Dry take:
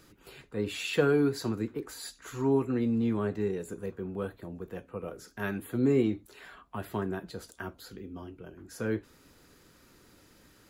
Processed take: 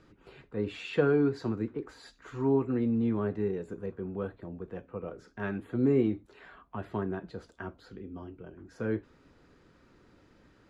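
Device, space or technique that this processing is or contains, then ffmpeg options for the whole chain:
through cloth: -af "lowpass=6.9k,highshelf=f=3.7k:g=-15.5"

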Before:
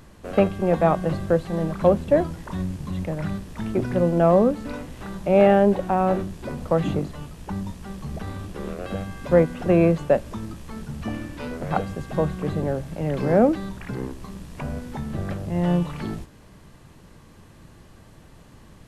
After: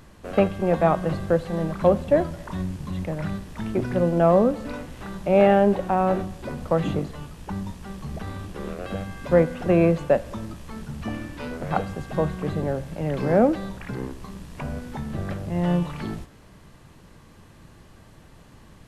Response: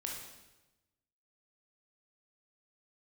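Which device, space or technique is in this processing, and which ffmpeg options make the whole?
filtered reverb send: -filter_complex "[0:a]asplit=2[a][b];[b]highpass=530,lowpass=6.2k[c];[1:a]atrim=start_sample=2205[d];[c][d]afir=irnorm=-1:irlink=0,volume=-13dB[e];[a][e]amix=inputs=2:normalize=0,volume=-1dB"

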